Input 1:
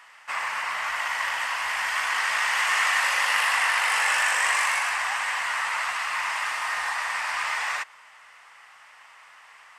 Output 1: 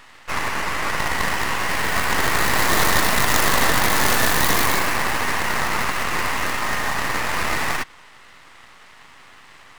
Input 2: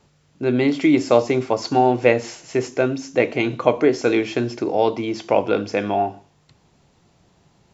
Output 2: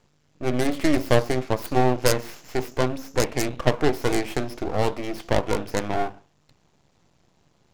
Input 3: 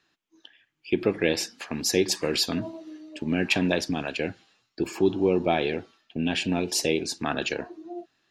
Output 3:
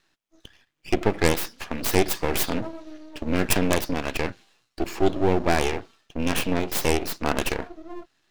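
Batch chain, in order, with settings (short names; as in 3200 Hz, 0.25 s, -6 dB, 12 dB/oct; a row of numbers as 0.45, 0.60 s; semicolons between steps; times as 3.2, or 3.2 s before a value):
tracing distortion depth 0.42 ms; half-wave rectifier; normalise peaks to -3 dBFS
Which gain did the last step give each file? +7.5, -1.5, +5.5 dB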